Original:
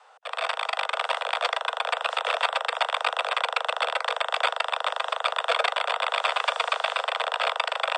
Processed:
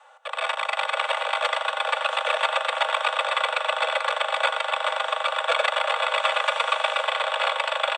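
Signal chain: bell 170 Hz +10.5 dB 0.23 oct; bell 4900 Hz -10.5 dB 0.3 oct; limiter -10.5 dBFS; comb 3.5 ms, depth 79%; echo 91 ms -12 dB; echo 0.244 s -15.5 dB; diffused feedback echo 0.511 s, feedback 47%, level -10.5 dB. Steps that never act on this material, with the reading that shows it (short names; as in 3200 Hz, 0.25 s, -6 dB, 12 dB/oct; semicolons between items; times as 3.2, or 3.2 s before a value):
bell 170 Hz: input band starts at 380 Hz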